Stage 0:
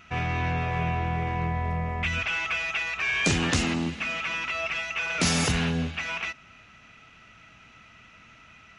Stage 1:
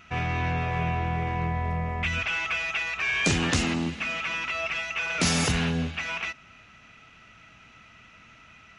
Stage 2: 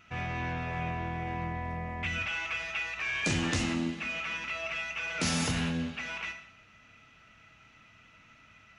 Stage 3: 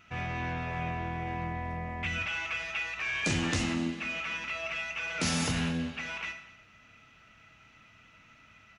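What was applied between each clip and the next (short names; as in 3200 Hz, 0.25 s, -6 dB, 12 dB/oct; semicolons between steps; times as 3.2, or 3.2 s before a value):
nothing audible
non-linear reverb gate 0.25 s falling, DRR 5.5 dB; gain -7 dB
echo 0.244 s -22 dB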